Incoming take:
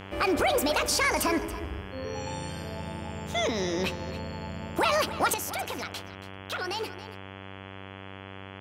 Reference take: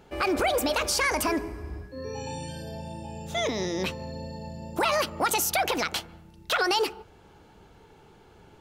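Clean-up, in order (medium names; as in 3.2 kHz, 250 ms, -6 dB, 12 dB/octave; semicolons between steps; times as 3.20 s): de-hum 96.6 Hz, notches 35; inverse comb 278 ms -15 dB; gain correction +8.5 dB, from 5.34 s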